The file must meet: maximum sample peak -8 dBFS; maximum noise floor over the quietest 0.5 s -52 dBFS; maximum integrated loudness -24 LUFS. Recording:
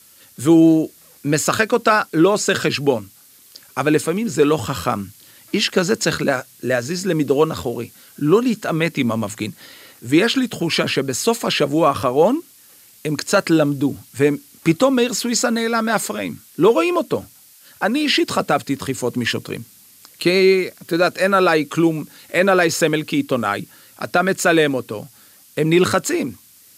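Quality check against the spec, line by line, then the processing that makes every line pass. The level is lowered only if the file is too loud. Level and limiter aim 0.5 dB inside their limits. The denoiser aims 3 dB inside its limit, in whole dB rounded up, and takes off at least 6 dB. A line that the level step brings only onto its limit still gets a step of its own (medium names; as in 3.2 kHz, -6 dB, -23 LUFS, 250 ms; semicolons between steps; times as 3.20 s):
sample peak -3.0 dBFS: fail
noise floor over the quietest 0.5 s -48 dBFS: fail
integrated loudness -18.5 LUFS: fail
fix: trim -6 dB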